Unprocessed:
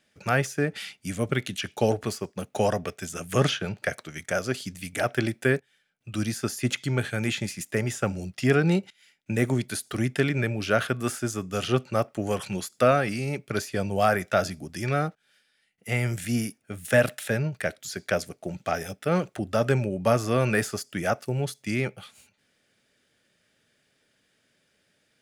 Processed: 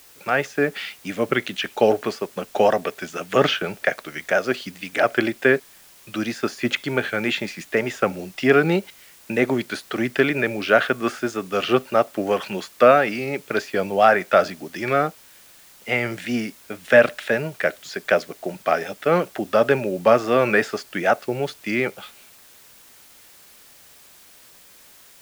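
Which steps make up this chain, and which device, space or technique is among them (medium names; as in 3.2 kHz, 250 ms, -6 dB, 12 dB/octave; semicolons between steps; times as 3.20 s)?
dictaphone (band-pass 290–3500 Hz; level rider gain up to 5 dB; wow and flutter; white noise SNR 27 dB); trim +3 dB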